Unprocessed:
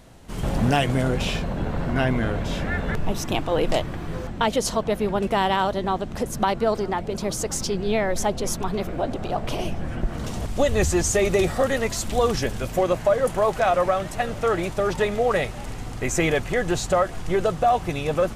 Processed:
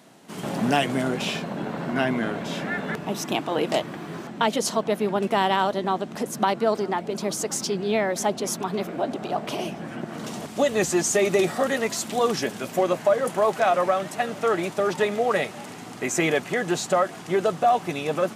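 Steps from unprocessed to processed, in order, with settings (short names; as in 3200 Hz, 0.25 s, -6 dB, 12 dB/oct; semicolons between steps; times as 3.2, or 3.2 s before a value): HPF 170 Hz 24 dB/oct; notch 510 Hz, Q 12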